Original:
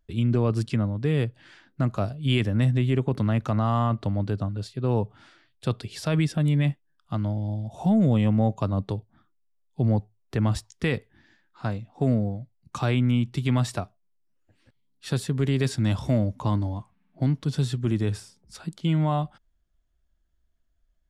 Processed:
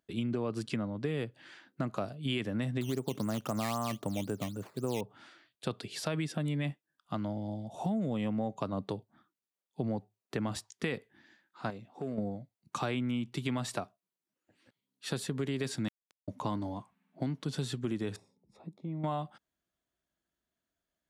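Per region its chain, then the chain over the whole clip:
2.81–5.01 s: treble shelf 2.6 kHz -11.5 dB + decimation with a swept rate 10× 3.8 Hz
11.70–12.18 s: peaking EQ 390 Hz +6.5 dB 0.26 oct + compression 2.5:1, threshold -35 dBFS + hard clipper -26.5 dBFS
15.88–16.28 s: high-pass 990 Hz 24 dB/octave + inverted gate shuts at -33 dBFS, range -26 dB + small samples zeroed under -42 dBFS
18.16–19.04 s: boxcar filter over 29 samples + compression 2:1, threshold -36 dBFS
whole clip: high-pass 200 Hz 12 dB/octave; band-stop 5.3 kHz, Q 24; compression, threshold -28 dBFS; trim -1.5 dB

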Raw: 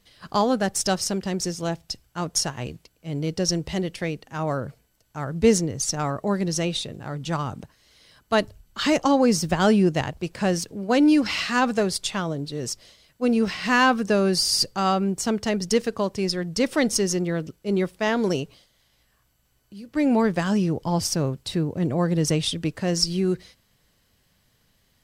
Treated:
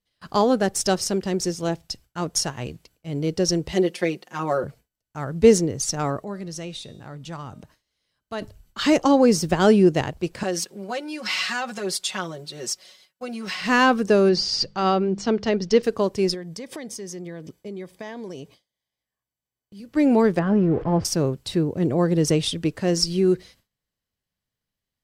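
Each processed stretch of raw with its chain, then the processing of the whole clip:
3.72–4.64 s: high-pass 250 Hz + comb 5.6 ms, depth 85%
6.21–8.42 s: de-hum 309.2 Hz, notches 36 + compression 1.5:1, threshold -46 dBFS
10.43–13.61 s: compression 10:1, threshold -22 dBFS + high-pass 630 Hz 6 dB/octave + comb 5.4 ms, depth 92%
14.29–15.83 s: low-pass 5.4 kHz 24 dB/octave + hum notches 50/100/150/200 Hz
16.34–19.80 s: compression 12:1, threshold -30 dBFS + comb of notches 1.4 kHz
20.39–21.05 s: jump at every zero crossing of -30 dBFS + low-pass 1.4 kHz + band-stop 940 Hz, Q 9.7
whole clip: dynamic bell 390 Hz, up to +6 dB, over -34 dBFS, Q 1.6; gate with hold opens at -42 dBFS

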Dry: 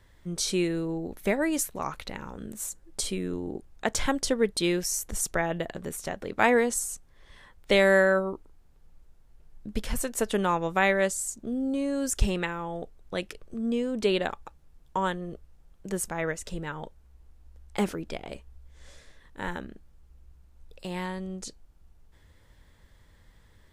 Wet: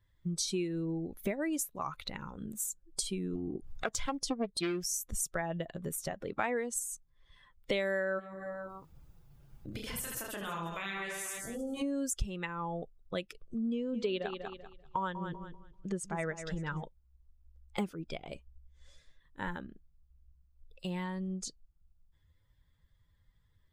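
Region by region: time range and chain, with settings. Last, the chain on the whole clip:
3.35–4.91 s: upward compressor, threshold -27 dBFS + loudspeaker Doppler distortion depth 0.47 ms
8.18–11.81 s: spectral peaks clipped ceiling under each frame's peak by 16 dB + reverse bouncing-ball echo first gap 30 ms, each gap 1.4×, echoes 6, each echo -2 dB + compression 4:1, threshold -35 dBFS
13.74–16.84 s: low-pass 6.8 kHz + upward compressor, threshold -40 dBFS + feedback delay 194 ms, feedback 36%, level -9 dB
whole clip: expander on every frequency bin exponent 1.5; compression 4:1, threshold -41 dBFS; trim +7.5 dB

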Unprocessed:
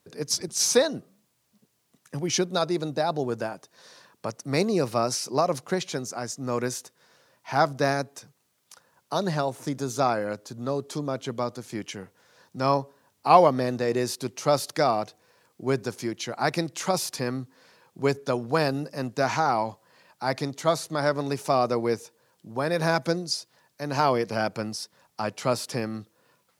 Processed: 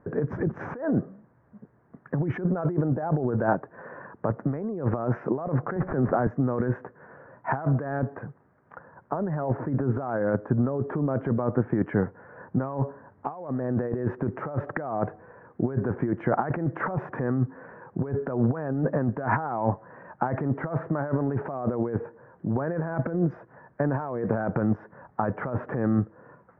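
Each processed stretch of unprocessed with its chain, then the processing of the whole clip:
5.76–6.27 s: median filter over 15 samples + three bands compressed up and down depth 100%
whole clip: elliptic low-pass 1.7 kHz, stop band 60 dB; tilt EQ -1.5 dB/octave; compressor with a negative ratio -33 dBFS, ratio -1; trim +6 dB

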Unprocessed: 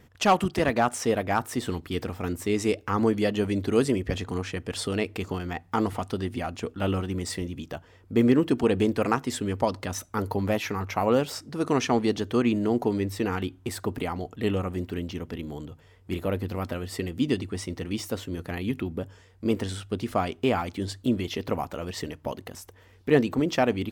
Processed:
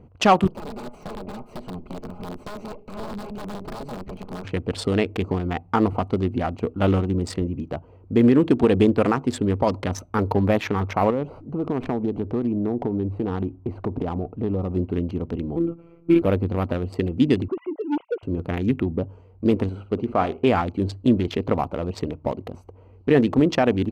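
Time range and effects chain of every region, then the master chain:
0.47–4.45 s: comb filter that takes the minimum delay 4.8 ms + compression 2.5:1, threshold -37 dBFS + integer overflow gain 32 dB
11.10–14.71 s: low-pass 1.5 kHz 6 dB/octave + compression 4:1, threshold -28 dBFS + sliding maximum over 5 samples
15.56–16.22 s: robot voice 168 Hz + small resonant body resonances 320/1300/2300 Hz, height 16 dB, ringing for 25 ms
17.48–18.23 s: formants replaced by sine waves + distance through air 87 m + transformer saturation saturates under 630 Hz
19.69–20.47 s: tone controls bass -5 dB, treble -10 dB + flutter echo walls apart 10 m, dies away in 0.27 s
whole clip: local Wiener filter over 25 samples; treble shelf 6.6 kHz -11 dB; loudness maximiser +14 dB; trim -6.5 dB

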